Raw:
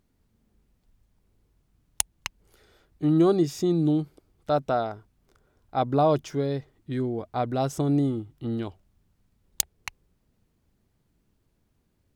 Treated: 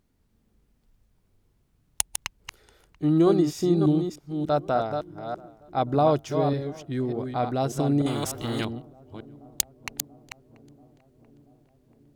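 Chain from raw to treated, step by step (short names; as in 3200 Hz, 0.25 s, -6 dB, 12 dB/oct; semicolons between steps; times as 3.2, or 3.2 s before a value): reverse delay 0.297 s, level -6 dB; darkening echo 0.685 s, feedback 72%, low-pass 1500 Hz, level -23.5 dB; 8.06–8.65 spectral compressor 2:1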